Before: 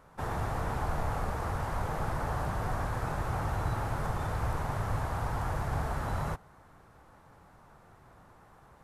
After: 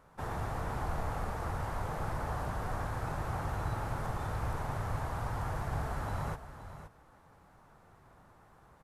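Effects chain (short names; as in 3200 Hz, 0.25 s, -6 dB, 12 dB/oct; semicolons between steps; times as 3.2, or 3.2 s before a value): echo 0.52 s -11.5 dB; gain -3.5 dB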